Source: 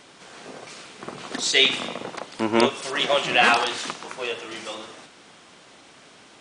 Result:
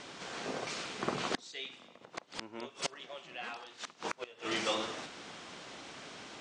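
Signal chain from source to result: LPF 7600 Hz 24 dB/oct; flipped gate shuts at -20 dBFS, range -27 dB; gain +1.5 dB

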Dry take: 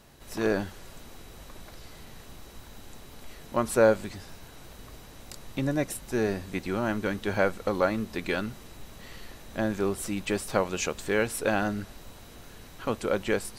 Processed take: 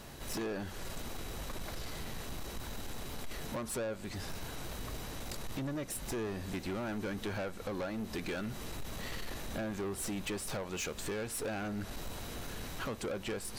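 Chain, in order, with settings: compressor 6:1, threshold -36 dBFS, peak gain reduction 19 dB; soft clip -39.5 dBFS, distortion -9 dB; gain +6.5 dB

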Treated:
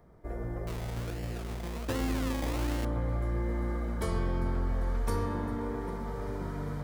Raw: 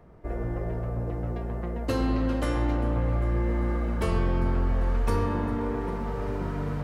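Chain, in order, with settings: high shelf 5600 Hz +8.5 dB; notch 2700 Hz, Q 5.1; 0.67–2.85 decimation with a swept rate 25×, swing 60% 1.3 Hz; gain -5.5 dB

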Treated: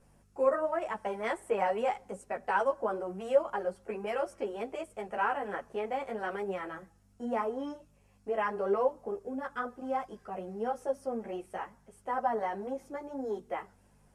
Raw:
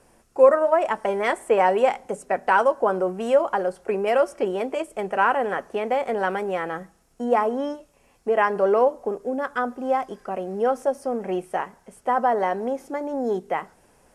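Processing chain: hum 50 Hz, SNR 29 dB; ensemble effect; gain -7.5 dB

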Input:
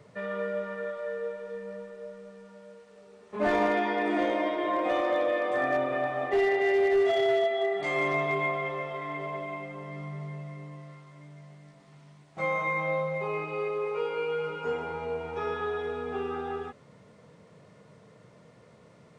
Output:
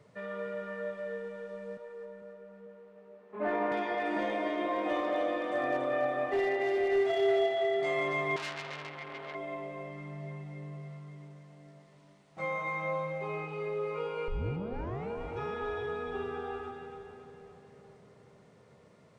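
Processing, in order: 1.77–3.72 three-band isolator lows -13 dB, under 180 Hz, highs -19 dB, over 2600 Hz; 14.28 tape start 0.82 s; split-band echo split 670 Hz, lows 0.447 s, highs 0.281 s, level -6 dB; 8.36–9.35 core saturation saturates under 3600 Hz; gain -5.5 dB

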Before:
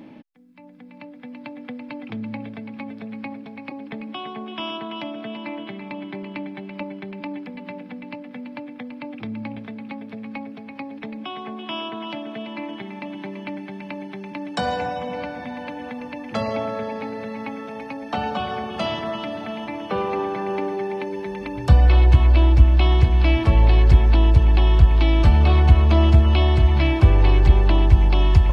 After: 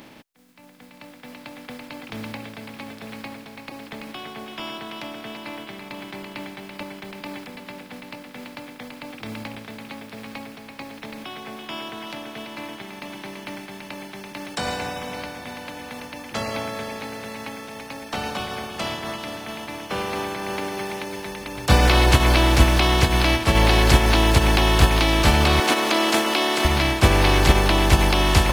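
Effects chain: spectral contrast lowered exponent 0.51; 25.6–26.65 Chebyshev high-pass 260 Hz, order 3; gain -3 dB

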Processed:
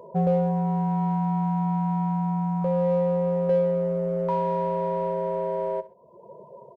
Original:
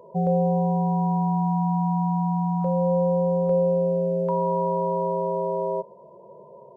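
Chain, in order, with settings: reverb removal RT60 0.92 s; in parallel at -7 dB: soft clip -31.5 dBFS, distortion -8 dB; on the sum: feedback echo 64 ms, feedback 26%, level -17 dB

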